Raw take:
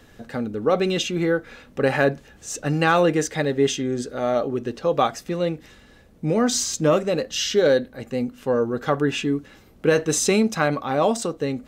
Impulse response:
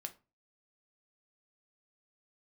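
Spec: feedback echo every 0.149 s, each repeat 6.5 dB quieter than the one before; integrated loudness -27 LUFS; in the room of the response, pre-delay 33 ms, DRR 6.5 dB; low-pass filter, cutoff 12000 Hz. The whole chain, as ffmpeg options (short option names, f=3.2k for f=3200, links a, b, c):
-filter_complex "[0:a]lowpass=12k,aecho=1:1:149|298|447|596|745|894:0.473|0.222|0.105|0.0491|0.0231|0.0109,asplit=2[a][b];[1:a]atrim=start_sample=2205,adelay=33[c];[b][c]afir=irnorm=-1:irlink=0,volume=-3.5dB[d];[a][d]amix=inputs=2:normalize=0,volume=-6dB"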